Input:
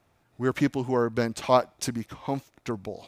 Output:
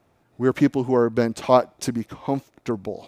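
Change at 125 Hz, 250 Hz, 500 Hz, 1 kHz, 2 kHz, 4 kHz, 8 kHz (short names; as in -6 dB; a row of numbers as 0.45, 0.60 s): +3.5, +6.0, +5.5, +3.5, +1.5, +0.5, 0.0 dB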